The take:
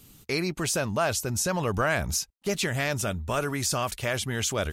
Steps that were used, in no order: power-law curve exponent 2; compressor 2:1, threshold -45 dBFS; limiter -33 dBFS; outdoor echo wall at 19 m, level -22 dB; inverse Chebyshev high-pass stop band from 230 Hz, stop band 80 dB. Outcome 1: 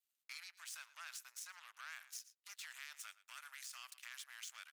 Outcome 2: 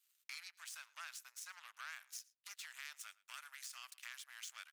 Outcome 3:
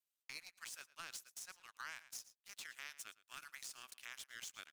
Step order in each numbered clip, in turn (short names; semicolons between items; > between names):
power-law curve > outdoor echo > compressor > limiter > inverse Chebyshev high-pass; compressor > power-law curve > inverse Chebyshev high-pass > limiter > outdoor echo; inverse Chebyshev high-pass > power-law curve > outdoor echo > compressor > limiter